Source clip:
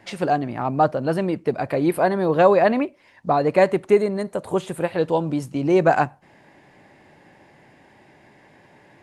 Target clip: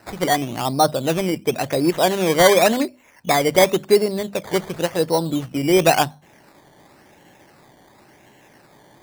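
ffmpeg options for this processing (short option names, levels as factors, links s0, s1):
-af "acrusher=samples=13:mix=1:aa=0.000001:lfo=1:lforange=7.8:lforate=0.93,bandreject=f=50:t=h:w=6,bandreject=f=100:t=h:w=6,bandreject=f=150:t=h:w=6,bandreject=f=200:t=h:w=6,bandreject=f=250:t=h:w=6,volume=1.19"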